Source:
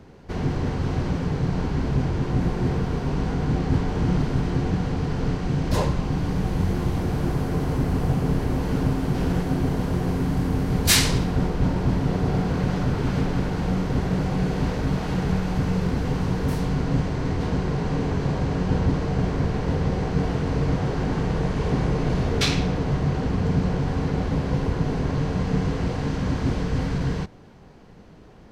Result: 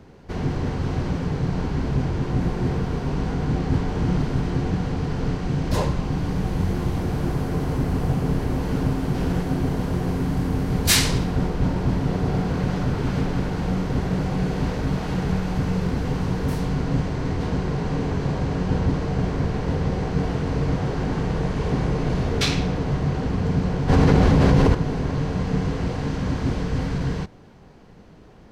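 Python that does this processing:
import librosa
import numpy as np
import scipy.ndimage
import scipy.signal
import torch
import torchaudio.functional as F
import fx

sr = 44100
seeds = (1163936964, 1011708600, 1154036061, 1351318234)

y = fx.env_flatten(x, sr, amount_pct=100, at=(23.88, 24.73), fade=0.02)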